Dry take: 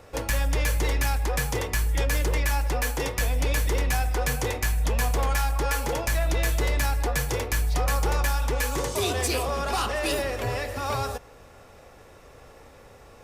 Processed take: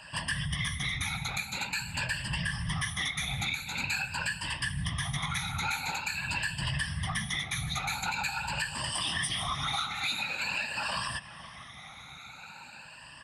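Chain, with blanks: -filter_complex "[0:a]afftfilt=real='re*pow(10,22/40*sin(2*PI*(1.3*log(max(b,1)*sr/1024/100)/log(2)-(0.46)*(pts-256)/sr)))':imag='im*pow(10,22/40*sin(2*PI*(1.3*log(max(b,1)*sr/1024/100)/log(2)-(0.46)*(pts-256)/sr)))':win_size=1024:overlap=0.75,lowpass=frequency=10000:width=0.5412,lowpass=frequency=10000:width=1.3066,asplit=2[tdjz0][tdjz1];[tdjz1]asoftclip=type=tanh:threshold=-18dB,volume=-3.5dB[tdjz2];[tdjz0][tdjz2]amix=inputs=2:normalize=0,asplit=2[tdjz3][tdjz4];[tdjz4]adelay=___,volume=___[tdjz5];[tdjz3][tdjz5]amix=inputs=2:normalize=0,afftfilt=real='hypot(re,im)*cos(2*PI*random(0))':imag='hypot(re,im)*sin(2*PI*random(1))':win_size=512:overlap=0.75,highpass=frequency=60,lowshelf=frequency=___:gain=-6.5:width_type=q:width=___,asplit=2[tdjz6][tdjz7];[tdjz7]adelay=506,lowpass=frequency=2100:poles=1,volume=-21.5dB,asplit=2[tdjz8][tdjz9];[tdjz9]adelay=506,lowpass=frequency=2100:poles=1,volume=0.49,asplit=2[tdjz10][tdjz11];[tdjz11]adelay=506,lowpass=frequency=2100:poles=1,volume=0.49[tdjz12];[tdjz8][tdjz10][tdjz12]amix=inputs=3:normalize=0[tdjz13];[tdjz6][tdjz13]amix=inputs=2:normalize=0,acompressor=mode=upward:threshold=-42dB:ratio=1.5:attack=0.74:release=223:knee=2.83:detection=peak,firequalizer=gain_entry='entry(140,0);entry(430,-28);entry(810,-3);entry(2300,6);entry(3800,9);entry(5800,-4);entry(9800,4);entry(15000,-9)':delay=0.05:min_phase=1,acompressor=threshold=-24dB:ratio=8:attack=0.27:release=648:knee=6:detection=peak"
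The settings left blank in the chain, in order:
14, -3.5dB, 140, 1.5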